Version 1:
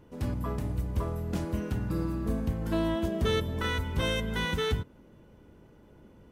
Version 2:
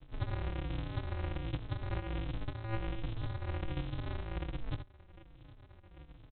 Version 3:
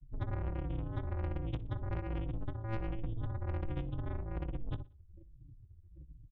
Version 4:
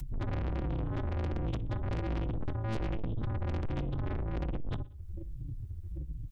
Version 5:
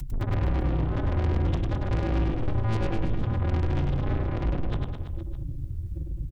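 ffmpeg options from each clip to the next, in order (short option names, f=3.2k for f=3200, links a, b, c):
-filter_complex "[0:a]acompressor=threshold=-34dB:ratio=6,aresample=8000,acrusher=samples=36:mix=1:aa=0.000001,aresample=44100,asplit=2[a][b];[b]adelay=4,afreqshift=-1.3[c];[a][c]amix=inputs=2:normalize=1,volume=3.5dB"
-af "afftdn=nr=35:nf=-45,asoftclip=type=tanh:threshold=-30dB,aecho=1:1:61|122|183:0.0891|0.0383|0.0165,volume=2dB"
-filter_complex "[0:a]acompressor=mode=upward:threshold=-38dB:ratio=2.5,asplit=2[a][b];[b]aeval=exprs='0.0398*sin(PI/2*2.82*val(0)/0.0398)':c=same,volume=-8.5dB[c];[a][c]amix=inputs=2:normalize=0"
-af "aecho=1:1:100|210|331|464.1|610.5:0.631|0.398|0.251|0.158|0.1,volume=5dB"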